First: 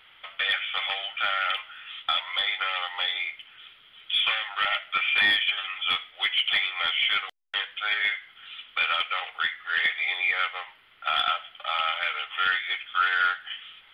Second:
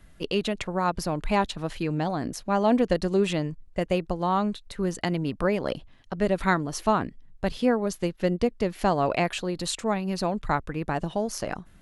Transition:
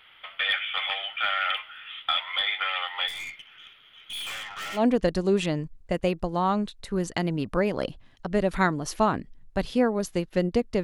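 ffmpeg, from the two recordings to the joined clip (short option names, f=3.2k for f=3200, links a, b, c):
-filter_complex "[0:a]asplit=3[a][b][c];[a]afade=t=out:st=3.07:d=0.02[d];[b]aeval=exprs='(tanh(44.7*val(0)+0.25)-tanh(0.25))/44.7':c=same,afade=t=in:st=3.07:d=0.02,afade=t=out:st=4.84:d=0.02[e];[c]afade=t=in:st=4.84:d=0.02[f];[d][e][f]amix=inputs=3:normalize=0,apad=whole_dur=10.83,atrim=end=10.83,atrim=end=4.84,asetpts=PTS-STARTPTS[g];[1:a]atrim=start=2.59:end=8.7,asetpts=PTS-STARTPTS[h];[g][h]acrossfade=d=0.12:c1=tri:c2=tri"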